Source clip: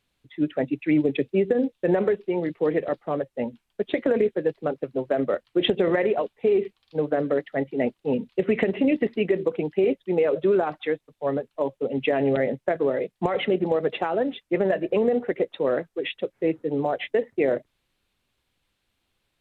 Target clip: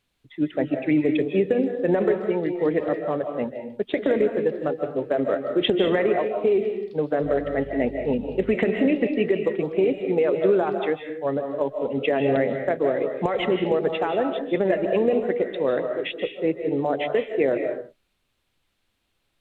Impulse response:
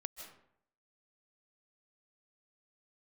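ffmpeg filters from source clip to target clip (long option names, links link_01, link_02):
-filter_complex "[1:a]atrim=start_sample=2205,afade=type=out:start_time=0.39:duration=0.01,atrim=end_sample=17640[link_01];[0:a][link_01]afir=irnorm=-1:irlink=0,asettb=1/sr,asplit=3[link_02][link_03][link_04];[link_02]atrim=end=7.234[link_05];[link_03]atrim=start=7.23:end=8.54,asetpts=PTS-STARTPTS,afade=type=in:duration=0.004:curve=qsin,afade=type=out:start_time=1.306:duration=0.004:curve=qsin,aeval=exprs='val(0)+0.00631*(sin(2*PI*50*n/s)+sin(2*PI*2*50*n/s)/2+sin(2*PI*3*50*n/s)/3+sin(2*PI*4*50*n/s)/4+sin(2*PI*5*50*n/s)/5)':channel_layout=same[link_06];[link_04]atrim=start=8.536[link_07];[link_05][link_06]acrossfade=duration=0.004:curve1=hsin:curve2=qsin[link_08];[link_08][link_07]acrossfade=duration=0.004:curve1=qsin:curve2=hsin,volume=4dB"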